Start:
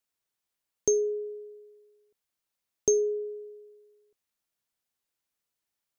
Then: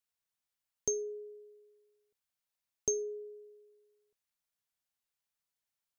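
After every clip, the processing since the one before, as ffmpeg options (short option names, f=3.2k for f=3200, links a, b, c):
-af "equalizer=f=350:w=1.5:g=-8.5,volume=-4.5dB"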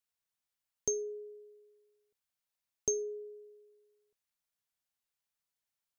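-af anull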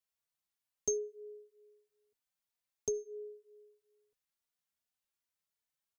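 -filter_complex "[0:a]asplit=2[a][b];[b]adelay=3.4,afreqshift=2.6[c];[a][c]amix=inputs=2:normalize=1,volume=1dB"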